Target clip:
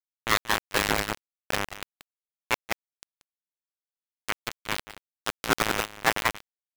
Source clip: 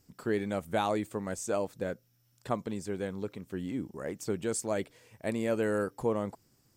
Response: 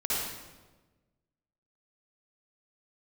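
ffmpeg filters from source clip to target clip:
-filter_complex "[0:a]asplit=2[a][b];[b]asplit=3[c][d][e];[c]adelay=115,afreqshift=52,volume=-15dB[f];[d]adelay=230,afreqshift=104,volume=-24.6dB[g];[e]adelay=345,afreqshift=156,volume=-34.3dB[h];[f][g][h]amix=inputs=3:normalize=0[i];[a][i]amix=inputs=2:normalize=0,aresample=8000,aresample=44100,acrusher=bits=3:mix=0:aa=0.000001,agate=range=-17dB:threshold=-27dB:ratio=16:detection=peak,acontrast=68,asplit=2[j][k];[k]aecho=0:1:182:0.178[l];[j][l]amix=inputs=2:normalize=0,acontrast=70,alimiter=limit=-17dB:level=0:latency=1:release=24,aeval=exprs='val(0)*sin(2*PI*1300*n/s+1300*0.35/0.45*sin(2*PI*0.45*n/s))':c=same,volume=9dB"

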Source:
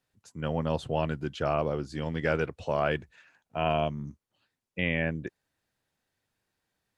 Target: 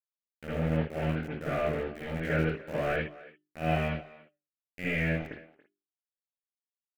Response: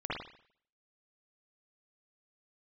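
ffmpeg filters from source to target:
-filter_complex "[0:a]aeval=exprs='val(0)*gte(abs(val(0)),0.0422)':c=same,equalizer=f=1k:w=2.7:g=-14.5,flanger=delay=3.6:depth=2.5:regen=-85:speed=0.37:shape=triangular,highshelf=f=2.8k:t=q:w=1.5:g=-6.5,bandreject=f=50:t=h:w=6,bandreject=f=100:t=h:w=6,bandreject=f=150:t=h:w=6,bandreject=f=200:t=h:w=6,bandreject=f=250:t=h:w=6,bandreject=f=300:t=h:w=6,bandreject=f=350:t=h:w=6,bandreject=f=400:t=h:w=6,asplit=2[a][b];[b]adelay=280,highpass=300,lowpass=3.4k,asoftclip=type=hard:threshold=-27.5dB,volume=-18dB[c];[a][c]amix=inputs=2:normalize=0[d];[1:a]atrim=start_sample=2205,atrim=end_sample=6174[e];[d][e]afir=irnorm=-1:irlink=0"

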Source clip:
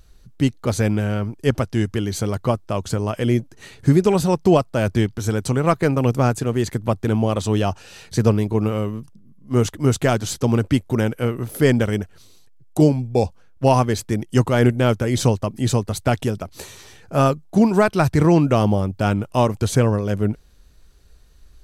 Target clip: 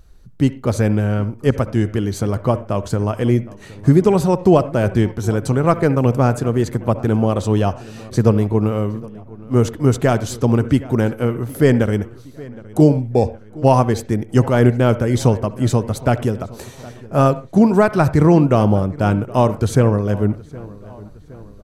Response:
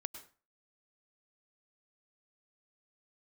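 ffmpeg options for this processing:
-filter_complex "[0:a]asplit=2[a][b];[b]adelay=766,lowpass=f=3.7k:p=1,volume=-20.5dB,asplit=2[c][d];[d]adelay=766,lowpass=f=3.7k:p=1,volume=0.53,asplit=2[e][f];[f]adelay=766,lowpass=f=3.7k:p=1,volume=0.53,asplit=2[g][h];[h]adelay=766,lowpass=f=3.7k:p=1,volume=0.53[i];[a][c][e][g][i]amix=inputs=5:normalize=0,asplit=2[j][k];[1:a]atrim=start_sample=2205,asetrate=70560,aresample=44100,lowpass=2k[l];[k][l]afir=irnorm=-1:irlink=0,volume=4.5dB[m];[j][m]amix=inputs=2:normalize=0,volume=-2dB"

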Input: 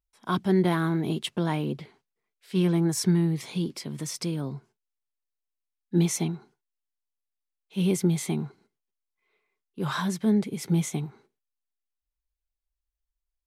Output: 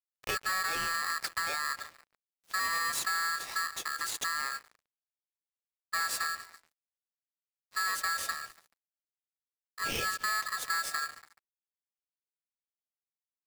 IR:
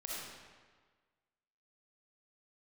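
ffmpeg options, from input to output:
-filter_complex "[0:a]asettb=1/sr,asplit=3[a][b][c];[a]atrim=end=2.594[d];[b]atrim=start=2.59:end=3,asetpts=PTS-STARTPTS,afade=t=in:d=0.004:c=qsin,afade=t=out:st=0.406:d=0.004:c=qsin,aecho=1:1:2.4:0.79,atrim=end_sample=18081[e];[c]atrim=start=2.996[f];[d][e]acrossfade=d=0.004:c1=hsin:c2=qsin[g];[g][f]acrossfade=d=0.004:c1=qsin:c2=hsin,aecho=1:1:142|284|426|568:0.0944|0.0538|0.0307|0.0175,asoftclip=type=tanh:threshold=-23dB,acompressor=threshold=-31dB:ratio=6,asettb=1/sr,asplit=3[h][i][j];[h]atrim=end=8.314[k];[i]atrim=start=8.31:end=9.82,asetpts=PTS-STARTPTS,afade=t=in:d=0.004:c=qsin,afade=t=out:st=1.506:d=0.004:c=qsin,tiltshelf=f=1.1k:g=-6[l];[j]atrim=start=9.816[m];[k][l]acrossfade=d=0.004:c1=hsin:c2=qsin[n];[n][m]acrossfade=d=0.004:c1=qsin:c2=hsin,aeval=exprs='sgn(val(0))*max(abs(val(0))-0.00299,0)':c=same,aeval=exprs='val(0)*sgn(sin(2*PI*1500*n/s))':c=same,volume=2dB"

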